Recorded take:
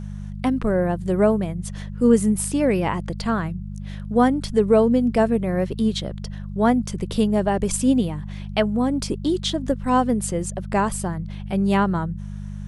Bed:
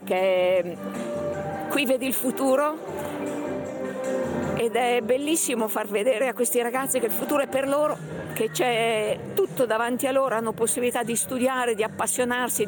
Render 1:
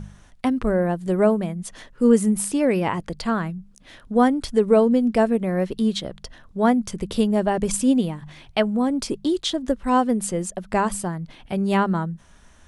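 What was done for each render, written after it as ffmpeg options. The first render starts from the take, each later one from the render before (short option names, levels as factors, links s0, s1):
-af "bandreject=f=50:t=h:w=4,bandreject=f=100:t=h:w=4,bandreject=f=150:t=h:w=4,bandreject=f=200:t=h:w=4"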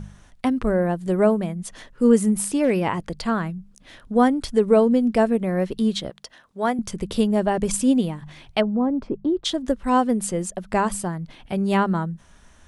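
-filter_complex "[0:a]asettb=1/sr,asplit=3[s0][s1][s2];[s0]atrim=end=2.204[s3];[s1]atrim=start=2.2:end=2.88,asetpts=PTS-STARTPTS,afade=t=in:d=0.004:c=qsin,afade=t=out:st=0.676:d=0.004:c=qsin,asoftclip=type=hard:threshold=0.251[s4];[s2]atrim=start=2.876[s5];[s3][s4]acrossfade=d=0.004:c1=hsin:c2=qsin[s6];[s6][s5]acrossfade=d=0.004:c1=qsin:c2=hsin,asettb=1/sr,asplit=3[s7][s8][s9];[s7]atrim=end=6.104[s10];[s8]atrim=start=6.1:end=6.79,asetpts=PTS-STARTPTS,afade=t=in:d=0.004:c=qsin,afade=t=out:st=0.686:d=0.004:c=qsin,highpass=f=580:p=1[s11];[s9]atrim=start=6.786[s12];[s10][s11]acrossfade=d=0.004:c1=hsin:c2=qsin[s13];[s13][s12]acrossfade=d=0.004:c1=qsin:c2=hsin,asplit=3[s14][s15][s16];[s14]afade=t=out:st=8.6:d=0.02[s17];[s15]lowpass=1100,afade=t=in:st=8.6:d=0.02,afade=t=out:st=9.44:d=0.02[s18];[s16]afade=t=in:st=9.44:d=0.02[s19];[s17][s18][s19]amix=inputs=3:normalize=0"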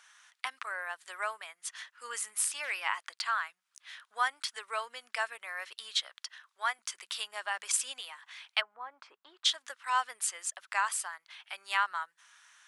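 -af "highpass=f=1200:w=0.5412,highpass=f=1200:w=1.3066,highshelf=f=9400:g=-6.5"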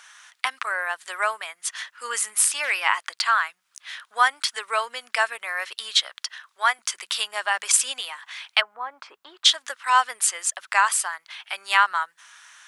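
-af "volume=3.55,alimiter=limit=0.794:level=0:latency=1"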